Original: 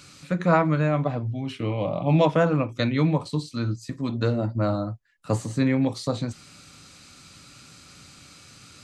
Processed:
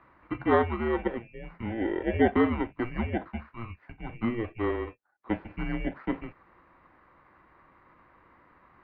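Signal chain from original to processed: FFT order left unsorted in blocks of 16 samples; mistuned SSB -230 Hz 370–2500 Hz

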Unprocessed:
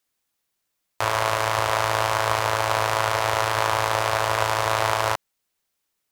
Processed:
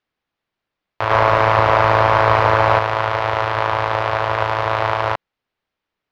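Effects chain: 1.1–2.79 sample leveller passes 2; air absorption 300 m; gain +5 dB

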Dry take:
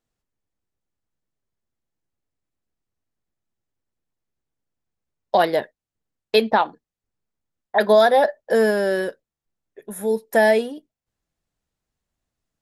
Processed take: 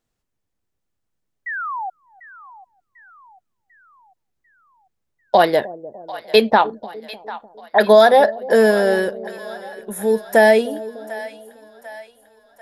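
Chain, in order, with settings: painted sound fall, 1.46–1.9, 720–2000 Hz -30 dBFS; split-band echo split 650 Hz, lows 0.301 s, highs 0.745 s, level -16 dB; gain +4 dB

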